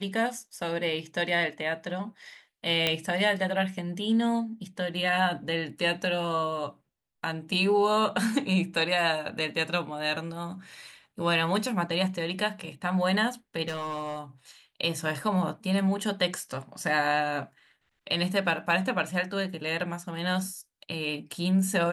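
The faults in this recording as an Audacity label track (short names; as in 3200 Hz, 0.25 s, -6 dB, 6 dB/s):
2.870000	2.870000	pop -10 dBFS
13.680000	14.200000	clipped -28.5 dBFS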